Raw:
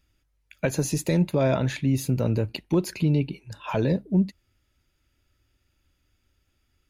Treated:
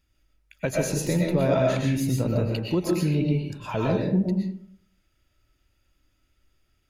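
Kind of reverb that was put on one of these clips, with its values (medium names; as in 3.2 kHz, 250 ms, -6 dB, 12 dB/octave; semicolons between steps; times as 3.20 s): algorithmic reverb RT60 0.63 s, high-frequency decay 0.5×, pre-delay 80 ms, DRR -1.5 dB; trim -2.5 dB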